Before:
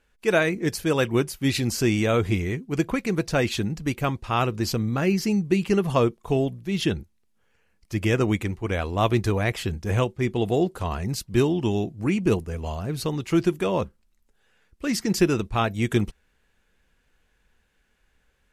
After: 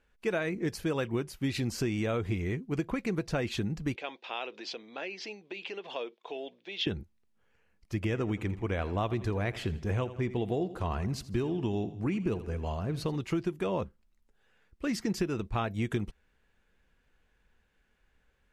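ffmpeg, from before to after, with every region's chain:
-filter_complex "[0:a]asettb=1/sr,asplit=3[s0][s1][s2];[s0]atrim=end=3.964[s3];[s1]atrim=start=3.96:end=6.87,asetpts=PTS-STARTPTS,afade=t=in:d=0.004:c=qsin,afade=t=out:st=2.906:d=0.004:c=qsin,acompressor=threshold=0.0501:ratio=6:attack=3.2:release=140:knee=1:detection=peak,highpass=f=370:w=0.5412,highpass=f=370:w=1.3066,equalizer=f=370:t=q:w=4:g=-4,equalizer=f=1200:t=q:w=4:g=-8,equalizer=f=2500:t=q:w=4:g=6,equalizer=f=3500:t=q:w=4:g=10,lowpass=f=5600:w=0.5412,lowpass=f=5600:w=1.3066[s4];[s2]atrim=start=6.866[s5];[s3][s4]acrossfade=d=0.004:c1=hsin:c2=qsin[s6];[s6][s5]acrossfade=d=0.004:c1=qsin:c2=hsin,asettb=1/sr,asplit=3[s7][s8][s9];[s7]atrim=end=8.004[s10];[s8]atrim=start=8:end=13.16,asetpts=PTS-STARTPTS,afade=t=in:d=0.004:c=qsin,afade=t=out:st=5.156:d=0.004:c=qsin,highshelf=f=7800:g=-4.5,aecho=1:1:82|164|246|328:0.141|0.0622|0.0273|0.012,atrim=end_sample=227556[s11];[s9]atrim=start=13.156[s12];[s10][s11]acrossfade=d=0.004:c1=hsin:c2=qsin[s13];[s13][s12]acrossfade=d=0.004:c1=qsin:c2=hsin,highshelf=f=5000:g=-9,acompressor=threshold=0.0631:ratio=6,volume=0.708"

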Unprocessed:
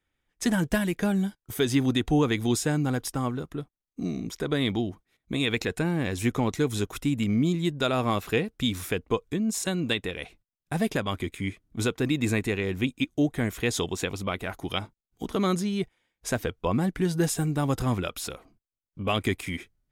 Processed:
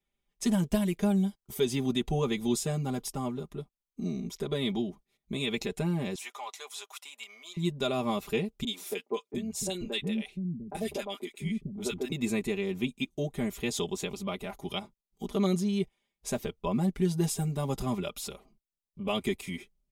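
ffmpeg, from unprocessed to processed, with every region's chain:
-filter_complex "[0:a]asettb=1/sr,asplit=3[s0][s1][s2];[s0]atrim=end=6.154[s3];[s1]atrim=start=6.15:end=7.57,asetpts=PTS-STARTPTS,afade=t=in:d=0.004:c=qsin,afade=t=out:st=1.416:d=0.004:c=qsin,highpass=f=770:w=0.5412,highpass=f=770:w=1.3066,highshelf=f=11000:g=-5.5[s4];[s2]atrim=start=7.566[s5];[s3][s4]acrossfade=d=0.004:c1=hsin:c2=qsin[s6];[s6][s5]acrossfade=d=0.004:c1=qsin:c2=hsin,asettb=1/sr,asplit=3[s7][s8][s9];[s7]atrim=end=8.644[s10];[s8]atrim=start=8.64:end=12.12,asetpts=PTS-STARTPTS,afade=t=in:d=0.004:c=qsin,afade=t=out:st=3.476:d=0.004:c=qsin,bandreject=f=1100:w=10,acrossover=split=250|1200[s11][s12][s13];[s13]adelay=30[s14];[s11]adelay=700[s15];[s15][s12][s14]amix=inputs=3:normalize=0,atrim=end_sample=153468[s16];[s9]atrim=start=12.116[s17];[s10][s16]acrossfade=d=0.004:c1=hsin:c2=qsin[s18];[s18][s17]acrossfade=d=0.004:c1=qsin:c2=hsin,equalizer=f=1600:w=2.4:g=-10.5,aecho=1:1:5:0.89,volume=0.501"

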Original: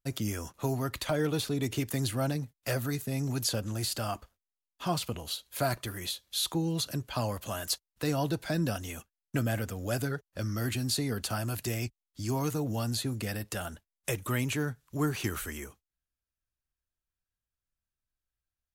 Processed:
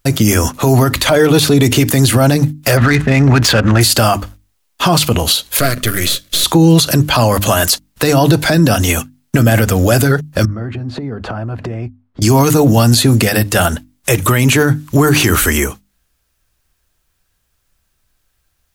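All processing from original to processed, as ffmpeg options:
-filter_complex "[0:a]asettb=1/sr,asplit=3[s0][s1][s2];[s0]atrim=end=2.774[s3];[s1]atrim=start=2.77:end=3.81,asetpts=PTS-STARTPTS,afade=t=in:d=0.004:c=qsin,afade=t=out:st=1.036:d=0.004:c=qsin,equalizer=f=1800:t=o:w=1.5:g=11.5,aeval=exprs='val(0)+0.00251*(sin(2*PI*60*n/s)+sin(2*PI*2*60*n/s)/2+sin(2*PI*3*60*n/s)/3+sin(2*PI*4*60*n/s)/4+sin(2*PI*5*60*n/s)/5)':c=same,adynamicsmooth=sensitivity=6:basefreq=1500[s4];[s2]atrim=start=3.806[s5];[s3][s4]acrossfade=d=0.004:c1=hsin:c2=qsin[s6];[s6][s5]acrossfade=d=0.004:c1=qsin:c2=hsin,asettb=1/sr,asplit=3[s7][s8][s9];[s7]atrim=end=5.594[s10];[s8]atrim=start=5.59:end=6.44,asetpts=PTS-STARTPTS,afade=t=in:d=0.004:c=qsin,afade=t=out:st=0.846:d=0.004:c=qsin,aeval=exprs='if(lt(val(0),0),0.251*val(0),val(0))':c=same,asuperstop=centerf=870:order=4:qfactor=2[s11];[s9]atrim=start=6.436[s12];[s10][s11]acrossfade=d=0.004:c1=hsin:c2=qsin[s13];[s13][s12]acrossfade=d=0.004:c1=qsin:c2=hsin,asettb=1/sr,asplit=3[s14][s15][s16];[s14]atrim=end=10.454[s17];[s15]atrim=start=10.45:end=12.22,asetpts=PTS-STARTPTS,afade=t=in:d=0.004:c=qsin,afade=t=out:st=1.766:d=0.004:c=qsin,lowpass=1200,acompressor=threshold=0.00562:ratio=12:attack=3.2:release=140:knee=1:detection=peak[s18];[s16]atrim=start=12.216[s19];[s17][s18]acrossfade=d=0.004:c1=hsin:c2=qsin[s20];[s20][s19]acrossfade=d=0.004:c1=qsin:c2=hsin,bandreject=f=50:t=h:w=6,bandreject=f=100:t=h:w=6,bandreject=f=150:t=h:w=6,bandreject=f=200:t=h:w=6,bandreject=f=250:t=h:w=6,bandreject=f=300:t=h:w=6,alimiter=level_in=23.7:limit=0.891:release=50:level=0:latency=1,volume=0.891"

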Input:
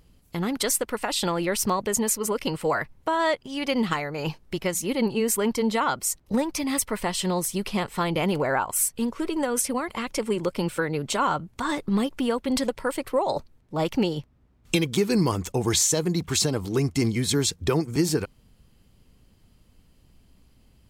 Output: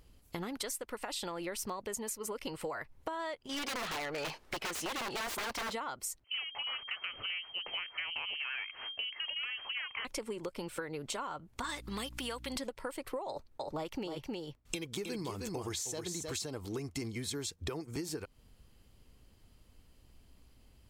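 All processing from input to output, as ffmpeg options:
-filter_complex "[0:a]asettb=1/sr,asplit=3[s0][s1][s2];[s0]atrim=end=3.494[s3];[s1]atrim=start=3.49:end=5.73,asetpts=PTS-STARTPTS,afade=t=in:d=0.004:c=qsin,afade=t=out:st=2.236:d=0.004:c=qsin,aeval=exprs='(mod(13.3*val(0)+1,2)-1)/13.3':c=same,asplit=2[s4][s5];[s5]highpass=f=720:p=1,volume=8.91,asoftclip=type=tanh:threshold=0.0794[s6];[s4][s6]amix=inputs=2:normalize=0,lowpass=f=4400:p=1,volume=0.501[s7];[s2]atrim=start=5.726[s8];[s3][s7]acrossfade=d=0.004:c1=hsin:c2=qsin[s9];[s9][s8]acrossfade=d=0.004:c1=qsin:c2=hsin,asettb=1/sr,asplit=3[s10][s11][s12];[s10]atrim=end=6.244[s13];[s11]atrim=start=6.24:end=10.05,asetpts=PTS-STARTPTS,afade=t=in:d=0.004:c=qsin,afade=t=out:st=3.806:d=0.004:c=qsin,equalizer=f=1200:w=0.47:g=6,aeval=exprs='(tanh(7.08*val(0)+0.6)-tanh(0.6))/7.08':c=same,lowpass=f=2700:t=q:w=0.5098,lowpass=f=2700:t=q:w=0.6013,lowpass=f=2700:t=q:w=0.9,lowpass=f=2700:t=q:w=2.563,afreqshift=-3200[s14];[s12]atrim=start=10.046[s15];[s13][s14]acrossfade=d=0.004:c1=hsin:c2=qsin[s16];[s16][s15]acrossfade=d=0.004:c1=qsin:c2=hsin,asettb=1/sr,asplit=3[s17][s18][s19];[s17]atrim=end=11.644[s20];[s18]atrim=start=11.64:end=12.56,asetpts=PTS-STARTPTS,afade=t=in:d=0.004:c=qsin,afade=t=out:st=0.916:d=0.004:c=qsin,tiltshelf=f=1100:g=-8,acompressor=mode=upward:threshold=0.02:ratio=2.5:attack=3.2:release=140:knee=2.83:detection=peak,aeval=exprs='val(0)+0.01*(sin(2*PI*60*n/s)+sin(2*PI*2*60*n/s)/2+sin(2*PI*3*60*n/s)/3+sin(2*PI*4*60*n/s)/4+sin(2*PI*5*60*n/s)/5)':c=same[s21];[s19]atrim=start=12.556[s22];[s20][s21]acrossfade=d=0.004:c1=hsin:c2=qsin[s23];[s23][s22]acrossfade=d=0.004:c1=qsin:c2=hsin,asettb=1/sr,asplit=3[s24][s25][s26];[s24]atrim=end=13.284[s27];[s25]atrim=start=13.28:end=16.34,asetpts=PTS-STARTPTS,afade=t=in:d=0.004:c=qsin,afade=t=out:st=3.056:d=0.004:c=qsin,agate=range=0.0224:threshold=0.00251:ratio=3:release=100:detection=peak,aecho=1:1:313:0.447,atrim=end_sample=134946[s28];[s26]atrim=start=16.336[s29];[s27][s28]acrossfade=d=0.004:c1=hsin:c2=qsin[s30];[s30][s29]acrossfade=d=0.004:c1=qsin:c2=hsin,equalizer=f=170:t=o:w=1.1:g=-6.5,acompressor=threshold=0.0224:ratio=12,volume=0.75"

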